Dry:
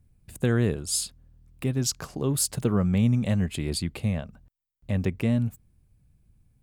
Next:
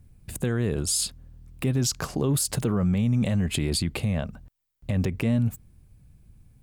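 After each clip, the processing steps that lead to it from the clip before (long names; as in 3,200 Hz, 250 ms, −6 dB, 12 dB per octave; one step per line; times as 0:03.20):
brickwall limiter −24 dBFS, peak gain reduction 11.5 dB
level +8 dB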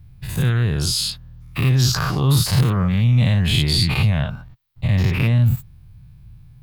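every bin's largest magnitude spread in time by 120 ms
graphic EQ with 10 bands 125 Hz +8 dB, 250 Hz −7 dB, 500 Hz −7 dB, 1,000 Hz +4 dB, 4,000 Hz +6 dB, 8,000 Hz −12 dB
level +2 dB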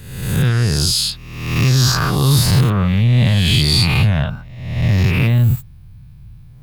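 peak hold with a rise ahead of every peak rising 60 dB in 0.94 s
in parallel at −8.5 dB: hard clipping −14.5 dBFS, distortion −13 dB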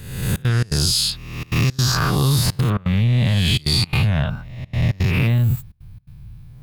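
downward compressor, threshold −14 dBFS, peak gain reduction 5 dB
gate pattern "xxxx.xx.xxxx" 168 BPM −24 dB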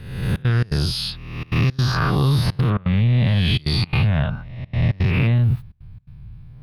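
moving average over 6 samples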